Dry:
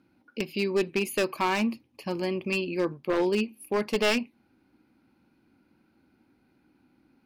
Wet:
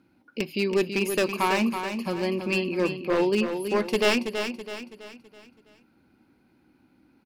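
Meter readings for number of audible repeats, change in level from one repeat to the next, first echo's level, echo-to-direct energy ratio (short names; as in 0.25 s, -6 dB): 4, -7.5 dB, -7.5 dB, -6.5 dB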